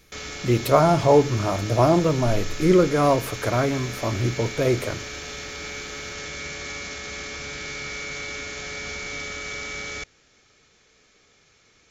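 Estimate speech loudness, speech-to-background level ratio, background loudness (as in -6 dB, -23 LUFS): -21.0 LUFS, 11.5 dB, -32.5 LUFS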